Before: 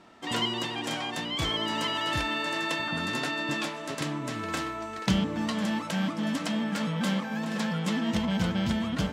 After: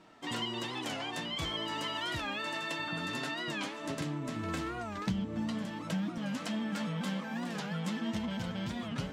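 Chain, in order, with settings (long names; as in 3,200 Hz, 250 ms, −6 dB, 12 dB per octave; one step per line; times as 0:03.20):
0:03.84–0:06.19: low-shelf EQ 300 Hz +10 dB
downward compressor 4 to 1, threshold −29 dBFS, peak gain reduction 14 dB
flanger 0.34 Hz, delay 6.2 ms, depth 6.3 ms, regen −39%
wow of a warped record 45 rpm, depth 160 cents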